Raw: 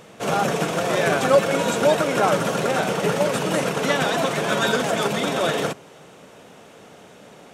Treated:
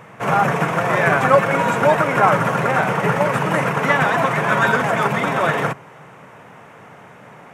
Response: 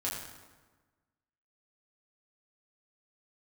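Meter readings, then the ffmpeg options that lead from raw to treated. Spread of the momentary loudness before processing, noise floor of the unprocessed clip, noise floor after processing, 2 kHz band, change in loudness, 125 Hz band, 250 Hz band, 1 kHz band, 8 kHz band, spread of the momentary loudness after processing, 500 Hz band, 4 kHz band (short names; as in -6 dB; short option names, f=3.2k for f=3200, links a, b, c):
5 LU, -47 dBFS, -43 dBFS, +6.5 dB, +4.0 dB, +6.5 dB, +2.0 dB, +7.0 dB, -6.5 dB, 4 LU, +1.0 dB, -5.0 dB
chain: -af "equalizer=f=125:t=o:w=1:g=12,equalizer=f=1k:t=o:w=1:g=10,equalizer=f=2k:t=o:w=1:g=10,equalizer=f=4k:t=o:w=1:g=-8,equalizer=f=8k:t=o:w=1:g=-3,volume=-2.5dB"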